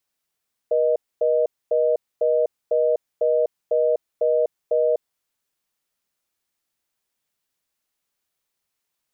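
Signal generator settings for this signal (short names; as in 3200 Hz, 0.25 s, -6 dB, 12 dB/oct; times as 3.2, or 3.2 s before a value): call progress tone reorder tone, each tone -19 dBFS 4.41 s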